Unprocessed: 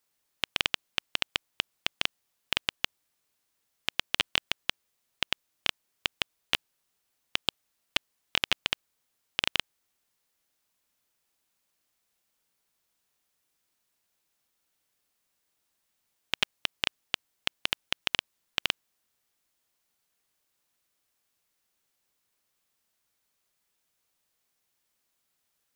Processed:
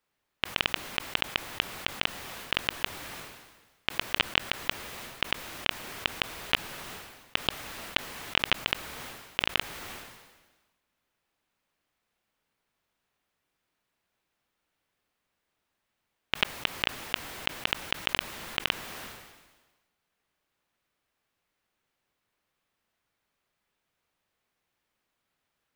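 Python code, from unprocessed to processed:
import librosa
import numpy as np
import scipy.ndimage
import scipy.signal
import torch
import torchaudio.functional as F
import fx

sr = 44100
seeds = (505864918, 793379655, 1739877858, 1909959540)

y = fx.bass_treble(x, sr, bass_db=1, treble_db=-13)
y = fx.sustainer(y, sr, db_per_s=46.0)
y = y * librosa.db_to_amplitude(3.5)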